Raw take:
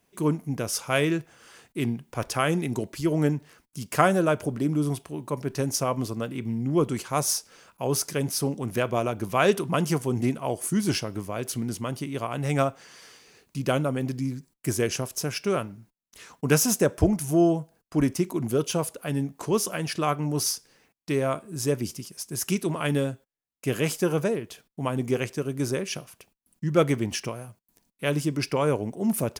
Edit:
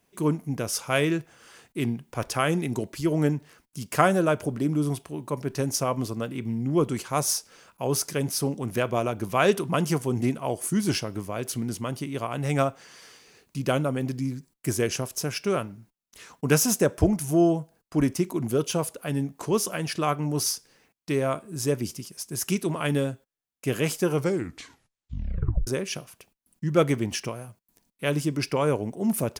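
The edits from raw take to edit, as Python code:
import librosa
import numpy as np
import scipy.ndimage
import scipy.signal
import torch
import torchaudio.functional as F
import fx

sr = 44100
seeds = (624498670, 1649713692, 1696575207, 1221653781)

y = fx.edit(x, sr, fx.tape_stop(start_s=24.09, length_s=1.58), tone=tone)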